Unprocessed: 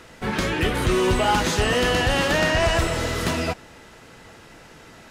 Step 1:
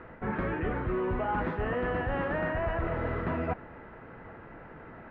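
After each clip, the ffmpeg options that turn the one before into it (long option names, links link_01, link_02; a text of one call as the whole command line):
ffmpeg -i in.wav -af "lowpass=frequency=1800:width=0.5412,lowpass=frequency=1800:width=1.3066,areverse,acompressor=threshold=-28dB:ratio=6,areverse" out.wav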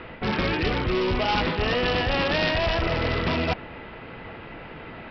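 ffmpeg -i in.wav -af "aresample=11025,aeval=exprs='clip(val(0),-1,0.0335)':channel_layout=same,aresample=44100,aexciter=amount=7.7:drive=3.8:freq=2400,volume=7dB" out.wav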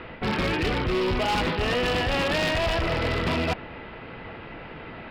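ffmpeg -i in.wav -af "asoftclip=type=hard:threshold=-20dB" out.wav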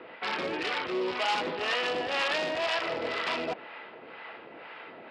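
ffmpeg -i in.wav -filter_complex "[0:a]acrossover=split=700[link_01][link_02];[link_01]aeval=exprs='val(0)*(1-0.7/2+0.7/2*cos(2*PI*2*n/s))':channel_layout=same[link_03];[link_02]aeval=exprs='val(0)*(1-0.7/2-0.7/2*cos(2*PI*2*n/s))':channel_layout=same[link_04];[link_03][link_04]amix=inputs=2:normalize=0,highpass=410,lowpass=7200" out.wav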